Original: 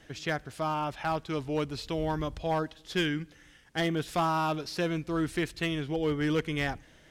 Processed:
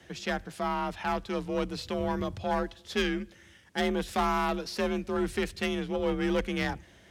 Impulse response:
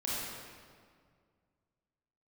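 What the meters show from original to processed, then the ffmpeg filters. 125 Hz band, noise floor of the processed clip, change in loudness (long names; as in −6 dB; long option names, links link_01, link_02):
−4.5 dB, −56 dBFS, 0.0 dB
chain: -af "aeval=exprs='0.0841*(cos(1*acos(clip(val(0)/0.0841,-1,1)))-cos(1*PI/2))+0.0168*(cos(2*acos(clip(val(0)/0.0841,-1,1)))-cos(2*PI/2))+0.00188*(cos(5*acos(clip(val(0)/0.0841,-1,1)))-cos(5*PI/2))':channel_layout=same,afreqshift=41"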